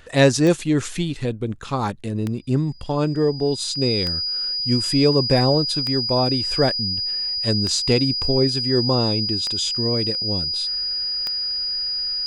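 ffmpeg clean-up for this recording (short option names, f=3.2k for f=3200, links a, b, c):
-af "adeclick=t=4,bandreject=f=4.9k:w=30"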